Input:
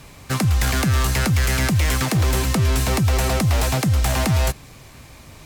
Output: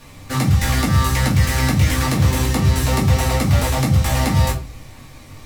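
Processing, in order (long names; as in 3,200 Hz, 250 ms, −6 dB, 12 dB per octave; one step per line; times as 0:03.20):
rectangular room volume 170 cubic metres, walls furnished, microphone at 2.4 metres
level −4 dB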